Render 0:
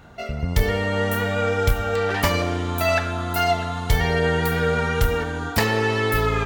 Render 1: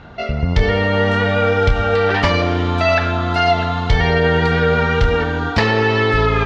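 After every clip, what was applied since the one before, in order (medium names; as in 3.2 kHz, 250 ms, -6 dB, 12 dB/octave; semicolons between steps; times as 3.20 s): low-pass 4.9 kHz 24 dB/octave; in parallel at +3 dB: peak limiter -15.5 dBFS, peak gain reduction 7.5 dB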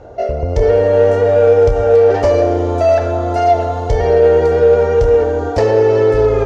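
FFT filter 120 Hz 0 dB, 180 Hz -14 dB, 320 Hz +4 dB, 550 Hz +13 dB, 1.1 kHz -7 dB, 2.2 kHz -11 dB, 3.8 kHz -13 dB, 6.3 kHz +4 dB; in parallel at -6.5 dB: saturation -13 dBFS, distortion -9 dB; on the sum: trim -3 dB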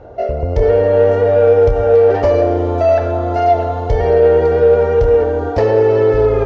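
distance through air 140 m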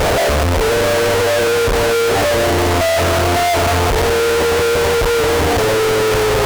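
one-bit comparator; loudspeaker Doppler distortion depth 0.15 ms; trim -2 dB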